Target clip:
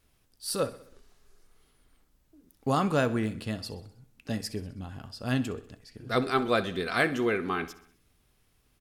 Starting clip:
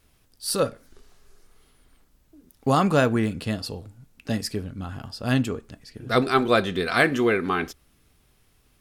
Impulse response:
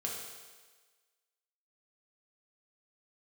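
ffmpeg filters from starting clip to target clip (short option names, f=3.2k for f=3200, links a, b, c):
-filter_complex "[0:a]asettb=1/sr,asplit=3[a][b][c];[a]atrim=end=4.534[d];[b]atrim=start=4.53:end=5,asetpts=PTS-STARTPTS,afade=t=in:d=0.004:c=qsin,afade=t=out:st=0.466:d=0.004:c=qsin,equalizer=f=1.3k:t=o:w=0.27:g=-8.5[e];[c]atrim=start=4.996[f];[d][e]acrossfade=d=0.004:c1=hsin:c2=qsin[g];[g][f]acrossfade=d=0.004:c1=qsin:c2=hsin,aecho=1:1:64|128|192|256|320:0.141|0.0777|0.0427|0.0235|0.0129,volume=-6dB"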